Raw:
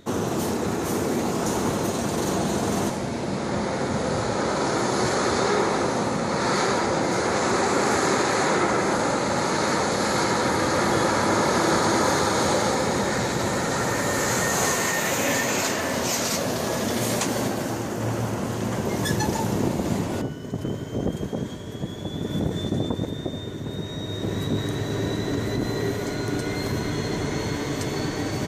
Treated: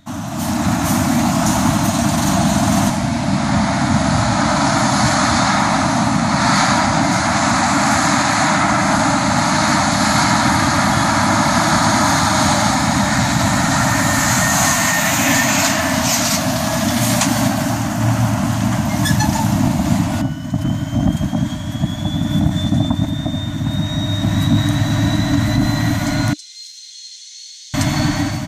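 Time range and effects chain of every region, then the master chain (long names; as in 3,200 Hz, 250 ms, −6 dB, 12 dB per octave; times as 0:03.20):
0:26.33–0:27.74: inverse Chebyshev high-pass filter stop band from 750 Hz, stop band 80 dB + high-frequency loss of the air 97 metres
whole clip: elliptic band-stop filter 300–620 Hz, stop band 40 dB; low-shelf EQ 360 Hz +3 dB; automatic gain control gain up to 11.5 dB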